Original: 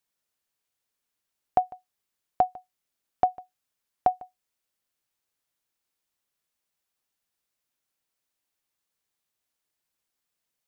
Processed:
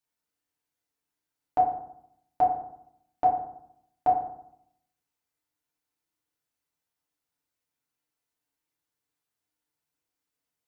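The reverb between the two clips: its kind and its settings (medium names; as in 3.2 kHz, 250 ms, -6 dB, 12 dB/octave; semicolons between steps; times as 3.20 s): FDN reverb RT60 0.73 s, low-frequency decay 1.3×, high-frequency decay 0.4×, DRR -5 dB; trim -8 dB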